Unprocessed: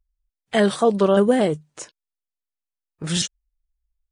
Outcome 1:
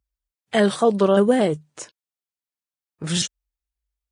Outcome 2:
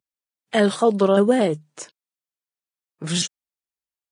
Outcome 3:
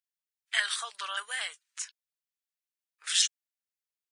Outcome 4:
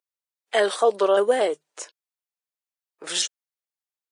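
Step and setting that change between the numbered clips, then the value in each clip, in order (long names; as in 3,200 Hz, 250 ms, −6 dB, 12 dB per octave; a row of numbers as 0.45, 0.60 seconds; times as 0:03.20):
high-pass filter, corner frequency: 52, 130, 1,500, 400 Hertz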